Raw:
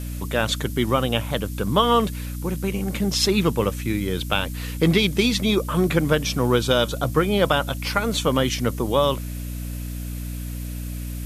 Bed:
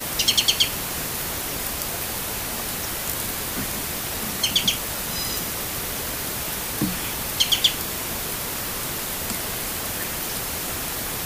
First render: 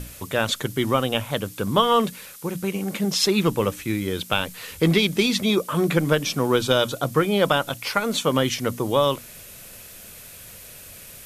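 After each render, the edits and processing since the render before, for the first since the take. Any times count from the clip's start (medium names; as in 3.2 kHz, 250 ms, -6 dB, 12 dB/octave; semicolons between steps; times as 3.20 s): hum notches 60/120/180/240/300 Hz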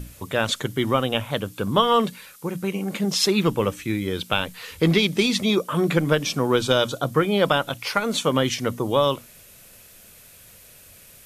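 noise print and reduce 6 dB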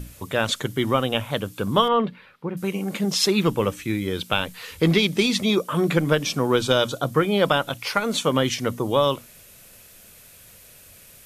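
1.88–2.57 s: distance through air 390 m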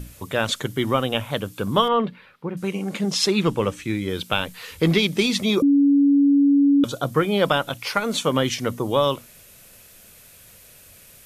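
2.55–4.09 s: low-pass 9.8 kHz; 5.62–6.84 s: bleep 282 Hz -12.5 dBFS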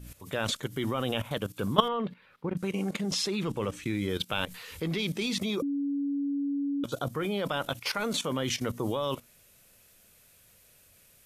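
level held to a coarse grid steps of 15 dB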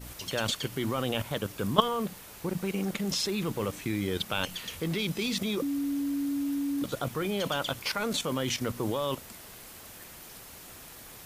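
add bed -19.5 dB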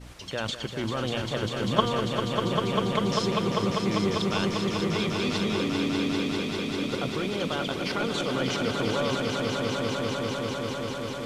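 distance through air 77 m; echo with a slow build-up 198 ms, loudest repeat 5, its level -6 dB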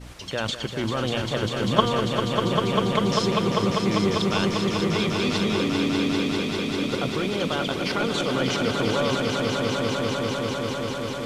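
trim +3.5 dB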